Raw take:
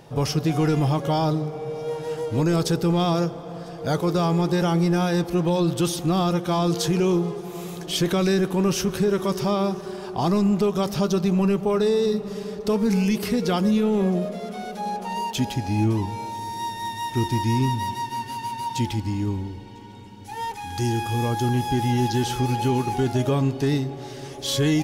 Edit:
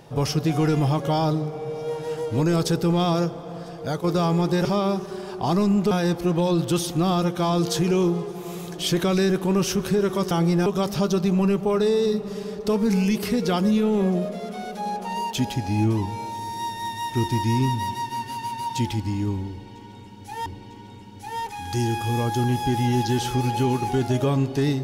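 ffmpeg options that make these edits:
ffmpeg -i in.wav -filter_complex "[0:a]asplit=7[link_01][link_02][link_03][link_04][link_05][link_06][link_07];[link_01]atrim=end=4.04,asetpts=PTS-STARTPTS,afade=type=out:start_time=3.6:duration=0.44:curve=qsin:silence=0.421697[link_08];[link_02]atrim=start=4.04:end=4.652,asetpts=PTS-STARTPTS,afade=type=in:duration=0.004:curve=hsin:silence=0.421697[link_09];[link_03]atrim=start=9.398:end=10.662[link_10];[link_04]atrim=start=4.998:end=9.402[link_11];[link_05]atrim=start=4.648:end=5.002[link_12];[link_06]atrim=start=10.658:end=20.462[link_13];[link_07]atrim=start=19.508[link_14];[link_08][link_09]concat=n=2:v=0:a=1[link_15];[link_15][link_10]acrossfade=duration=0.004:curve1=hsin:curve2=hsin[link_16];[link_16][link_11]acrossfade=duration=0.004:curve1=hsin:curve2=hsin[link_17];[link_17][link_12]acrossfade=duration=0.004:curve1=hsin:curve2=hsin[link_18];[link_18][link_13]acrossfade=duration=0.004:curve1=hsin:curve2=hsin[link_19];[link_19][link_14]acrossfade=duration=0.004:curve1=hsin:curve2=hsin" out.wav

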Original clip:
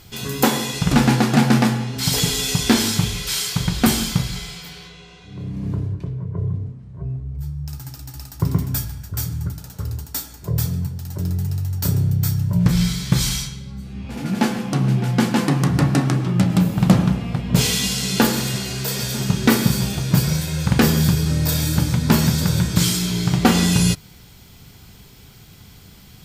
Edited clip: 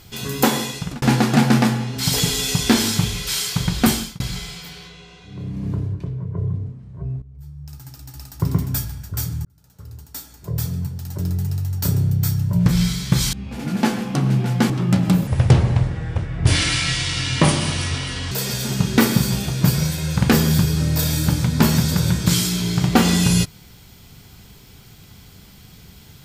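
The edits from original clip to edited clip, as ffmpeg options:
ffmpeg -i in.wav -filter_complex "[0:a]asplit=9[link_01][link_02][link_03][link_04][link_05][link_06][link_07][link_08][link_09];[link_01]atrim=end=1.02,asetpts=PTS-STARTPTS,afade=type=out:start_time=0.6:duration=0.42[link_10];[link_02]atrim=start=1.02:end=4.2,asetpts=PTS-STARTPTS,afade=type=in:duration=0.004:curve=hsin,afade=type=out:start_time=2.87:duration=0.31[link_11];[link_03]atrim=start=4.2:end=7.22,asetpts=PTS-STARTPTS,afade=type=in:duration=0.004:curve=hsin,afade=type=out:start_time=3.016:duration=0.004:curve=hsin:silence=0.177828[link_12];[link_04]atrim=start=7.22:end=9.45,asetpts=PTS-STARTPTS,afade=type=in:duration=1.34:silence=0.177828,afade=type=out:start_time=2.226:duration=0.004:curve=hsin[link_13];[link_05]atrim=start=9.45:end=13.332,asetpts=PTS-STARTPTS,afade=type=in:duration=1.59[link_14];[link_06]atrim=start=13.908:end=15.282[link_15];[link_07]atrim=start=16.168:end=16.744[link_16];[link_08]atrim=start=16.74:end=18.81,asetpts=PTS-STARTPTS,asetrate=29988,aresample=44100[link_17];[link_09]atrim=start=18.806[link_18];[link_10][link_11][link_12][link_13][link_14]concat=n=5:v=0:a=1[link_19];[link_19][link_15]acrossfade=duration=0.004:curve1=hsin:curve2=hsin[link_20];[link_20][link_16]acrossfade=duration=0.004:curve1=hsin:curve2=hsin[link_21];[link_21][link_17]acrossfade=duration=0.004:curve1=hsin:curve2=hsin[link_22];[link_22][link_18]acrossfade=duration=0.004:curve1=hsin:curve2=hsin" out.wav

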